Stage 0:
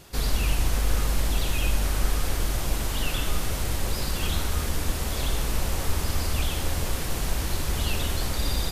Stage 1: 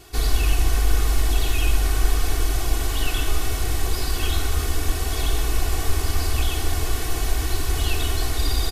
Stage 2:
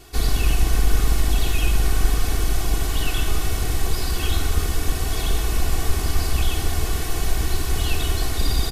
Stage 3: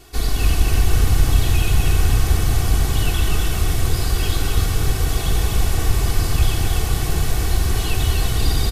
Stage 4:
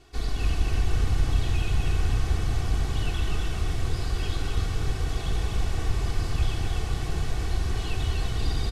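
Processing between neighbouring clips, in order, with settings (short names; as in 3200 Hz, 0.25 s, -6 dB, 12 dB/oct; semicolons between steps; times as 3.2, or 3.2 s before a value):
comb 2.7 ms, depth 93%
octaver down 2 oct, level -1 dB
frequency-shifting echo 0.248 s, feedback 47%, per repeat +31 Hz, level -3.5 dB
air absorption 68 m; gain -8 dB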